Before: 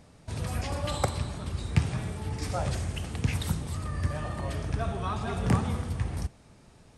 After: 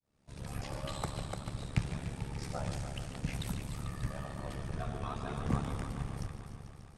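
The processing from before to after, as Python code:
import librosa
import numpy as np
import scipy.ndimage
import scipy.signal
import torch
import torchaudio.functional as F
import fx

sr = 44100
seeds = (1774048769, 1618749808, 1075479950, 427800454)

y = fx.fade_in_head(x, sr, length_s=0.57)
y = fx.echo_heads(y, sr, ms=147, heads='first and second', feedback_pct=63, wet_db=-11.0)
y = y * np.sin(2.0 * np.pi * 35.0 * np.arange(len(y)) / sr)
y = y * librosa.db_to_amplitude(-5.5)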